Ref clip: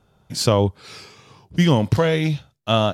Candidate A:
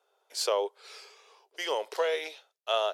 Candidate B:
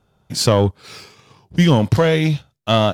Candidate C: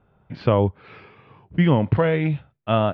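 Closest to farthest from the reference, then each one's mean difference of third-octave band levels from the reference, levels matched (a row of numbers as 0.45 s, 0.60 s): B, C, A; 1.5 dB, 4.5 dB, 9.5 dB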